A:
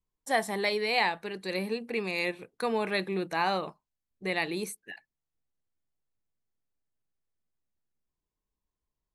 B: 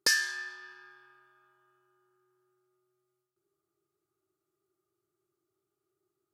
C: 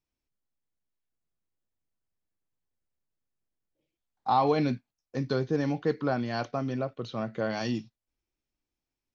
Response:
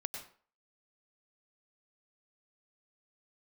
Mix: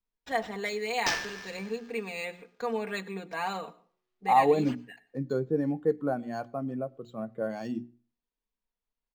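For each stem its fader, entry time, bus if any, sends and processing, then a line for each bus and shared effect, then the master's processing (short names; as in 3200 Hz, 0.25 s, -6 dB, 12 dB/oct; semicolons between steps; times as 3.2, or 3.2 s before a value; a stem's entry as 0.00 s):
-7.0 dB, 0.00 s, send -12.5 dB, comb 4.3 ms, depth 74%
-11.5 dB, 1.00 s, no send, half-waves squared off; high shelf 4100 Hz +10.5 dB
+2.0 dB, 0.00 s, send -22 dB, spectral expander 1.5:1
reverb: on, RT60 0.45 s, pre-delay 90 ms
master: bell 74 Hz -10.5 dB 1.2 oct; notches 60/120/180/240/300/360 Hz; decimation joined by straight lines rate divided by 4×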